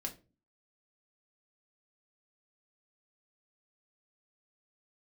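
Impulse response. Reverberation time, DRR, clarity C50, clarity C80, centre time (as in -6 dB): 0.30 s, 1.5 dB, 14.5 dB, 21.0 dB, 10 ms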